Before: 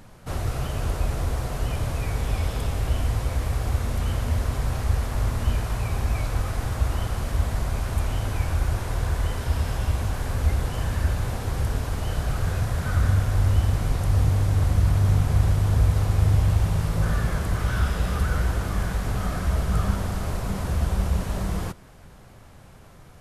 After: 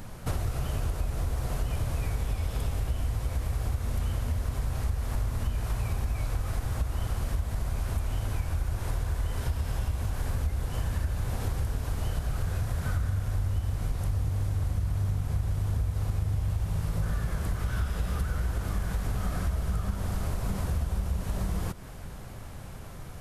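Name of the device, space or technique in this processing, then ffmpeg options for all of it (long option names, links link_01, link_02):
ASMR close-microphone chain: -af "lowshelf=frequency=130:gain=5,acompressor=threshold=-30dB:ratio=6,highshelf=frequency=10000:gain=6.5,volume=3.5dB"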